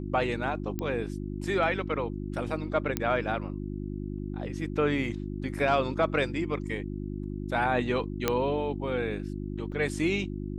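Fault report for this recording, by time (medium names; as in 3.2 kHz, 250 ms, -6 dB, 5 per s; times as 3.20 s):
hum 50 Hz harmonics 7 -35 dBFS
0.79 s: pop -19 dBFS
2.97 s: pop -12 dBFS
8.28 s: pop -9 dBFS
9.72 s: dropout 3.1 ms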